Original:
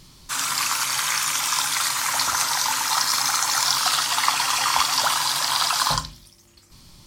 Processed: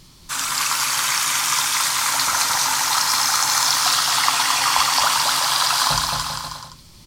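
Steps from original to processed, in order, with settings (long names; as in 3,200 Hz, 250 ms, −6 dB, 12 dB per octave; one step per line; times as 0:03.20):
bouncing-ball delay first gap 220 ms, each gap 0.8×, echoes 5
level +1 dB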